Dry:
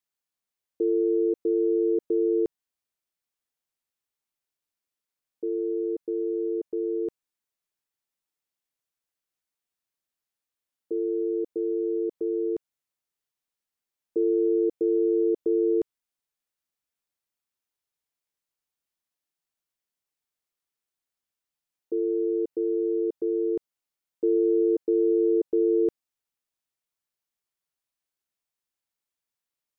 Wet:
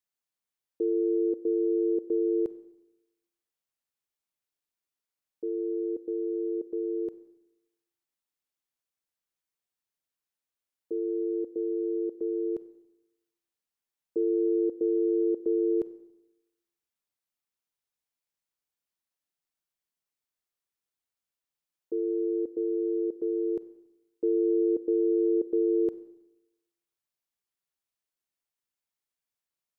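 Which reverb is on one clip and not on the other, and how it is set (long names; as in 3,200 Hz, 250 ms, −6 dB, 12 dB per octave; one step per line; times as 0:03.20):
four-comb reverb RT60 0.94 s, combs from 31 ms, DRR 14.5 dB
level −3 dB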